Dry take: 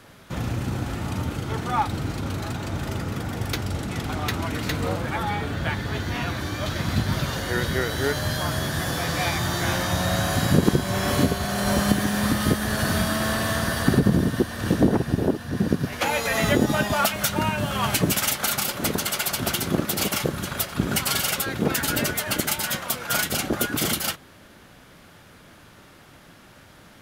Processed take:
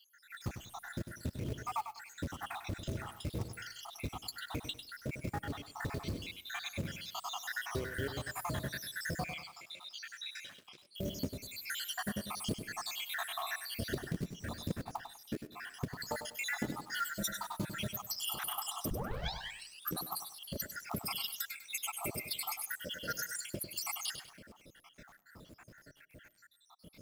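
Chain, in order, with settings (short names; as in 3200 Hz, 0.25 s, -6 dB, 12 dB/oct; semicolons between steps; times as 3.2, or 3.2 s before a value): random spectral dropouts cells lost 84%; compressor 5:1, threshold -33 dBFS, peak gain reduction 16 dB; short-mantissa float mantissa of 2-bit; 9.24–10.95 band-pass 3200 Hz, Q 1.8; 16.91–17.8 comb 5.9 ms, depth 77%; 18.9 tape start 1.17 s; reverb RT60 0.45 s, pre-delay 70 ms, DRR 20 dB; lo-fi delay 99 ms, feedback 35%, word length 9-bit, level -9 dB; gain -2 dB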